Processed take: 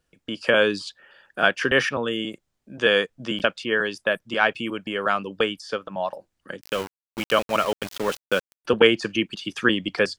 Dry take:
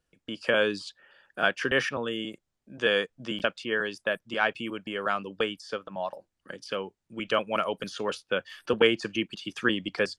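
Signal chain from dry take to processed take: 6.61–8.65 sample gate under -34 dBFS; gain +5.5 dB

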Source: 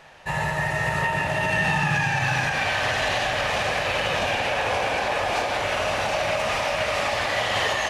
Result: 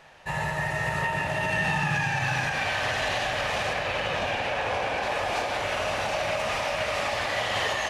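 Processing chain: 3.73–5.03 high shelf 6100 Hz -8 dB; gain -3.5 dB

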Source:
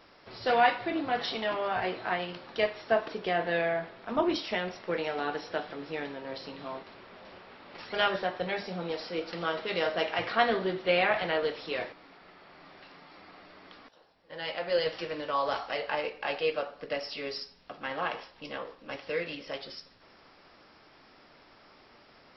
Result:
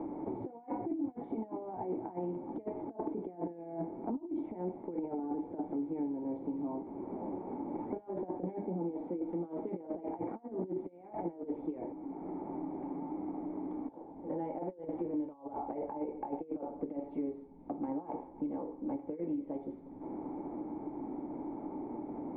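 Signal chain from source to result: negative-ratio compressor -35 dBFS, ratio -0.5; vocal tract filter u; three-band squash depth 100%; gain +8.5 dB

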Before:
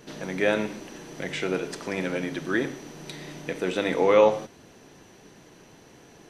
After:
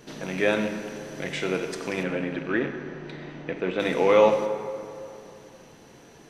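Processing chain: rattling part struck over -35 dBFS, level -27 dBFS; 2.03–3.8 LPF 2500 Hz 12 dB/oct; plate-style reverb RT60 2.8 s, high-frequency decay 0.5×, DRR 7.5 dB

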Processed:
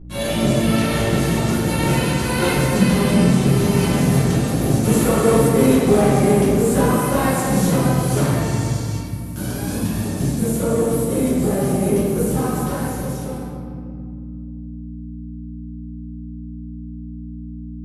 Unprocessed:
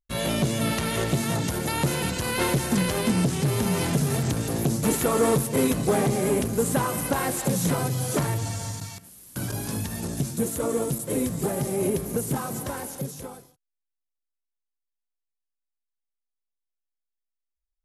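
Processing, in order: hum 60 Hz, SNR 12 dB; reverb RT60 2.2 s, pre-delay 5 ms, DRR -11 dB; gain -5 dB

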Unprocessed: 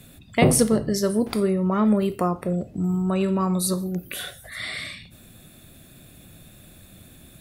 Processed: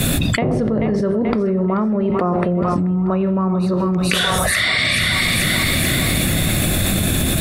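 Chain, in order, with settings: on a send: split-band echo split 710 Hz, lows 0.11 s, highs 0.434 s, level -10 dB; on the sum: treble ducked by the level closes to 1700 Hz, closed at -20 dBFS; fast leveller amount 100%; gain -4.5 dB

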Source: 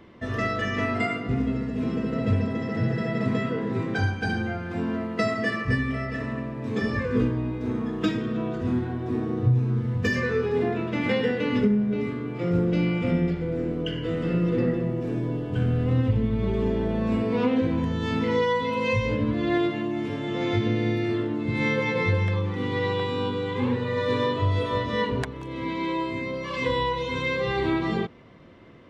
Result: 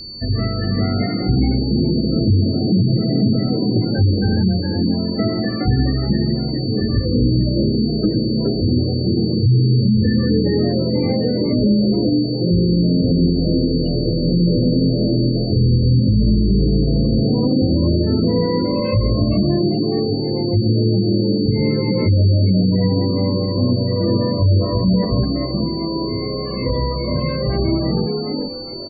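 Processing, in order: tilt -4.5 dB/oct; on a send: frequency-shifting echo 0.415 s, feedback 32%, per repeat +89 Hz, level -4.5 dB; on the sum: spectral gate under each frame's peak -25 dB strong; whine 4500 Hz -29 dBFS; limiter -5.5 dBFS, peak gain reduction 8.5 dB; gain -2 dB

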